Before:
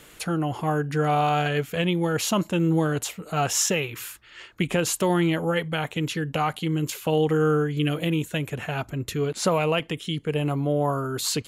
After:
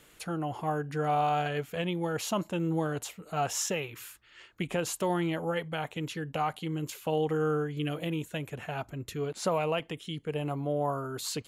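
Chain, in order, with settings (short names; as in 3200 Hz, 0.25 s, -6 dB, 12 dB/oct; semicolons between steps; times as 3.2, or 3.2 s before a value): dynamic EQ 750 Hz, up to +5 dB, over -38 dBFS, Q 1.1; gain -9 dB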